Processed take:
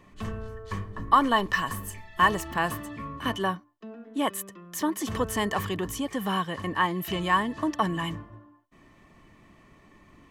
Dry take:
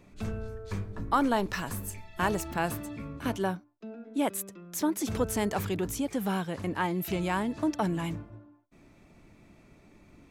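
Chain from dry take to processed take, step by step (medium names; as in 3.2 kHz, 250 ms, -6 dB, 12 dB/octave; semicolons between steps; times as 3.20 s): small resonant body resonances 1.1/1.8/3 kHz, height 16 dB, ringing for 35 ms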